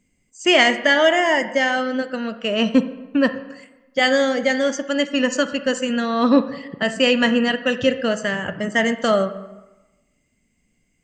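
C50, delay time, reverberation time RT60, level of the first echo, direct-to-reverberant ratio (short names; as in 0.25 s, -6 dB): 12.0 dB, none, 1.1 s, none, 11.0 dB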